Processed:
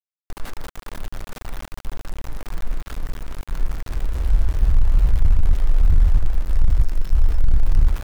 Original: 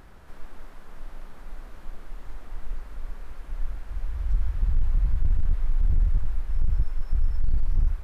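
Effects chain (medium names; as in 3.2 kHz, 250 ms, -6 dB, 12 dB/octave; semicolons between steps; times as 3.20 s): 6.69–7.16 s: peaking EQ 570 Hz -4.5 dB -> -14.5 dB 2 oct; small samples zeroed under -35.5 dBFS; trim +7 dB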